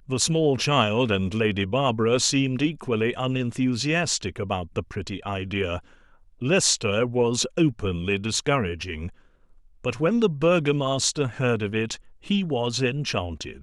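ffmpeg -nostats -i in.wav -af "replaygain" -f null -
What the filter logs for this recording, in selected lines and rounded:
track_gain = +4.1 dB
track_peak = 0.460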